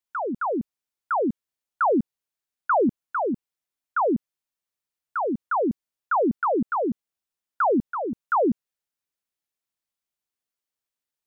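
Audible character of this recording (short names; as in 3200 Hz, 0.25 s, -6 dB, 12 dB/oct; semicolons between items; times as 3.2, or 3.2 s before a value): noise floor -89 dBFS; spectral tilt -1.5 dB/oct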